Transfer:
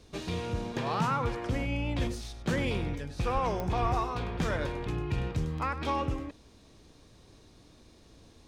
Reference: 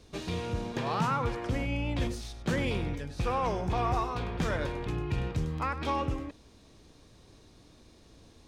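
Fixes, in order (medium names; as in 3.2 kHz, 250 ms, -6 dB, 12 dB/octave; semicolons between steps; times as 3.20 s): de-click; 3.33–3.45 s: high-pass 140 Hz 24 dB/octave; 3.81–3.93 s: high-pass 140 Hz 24 dB/octave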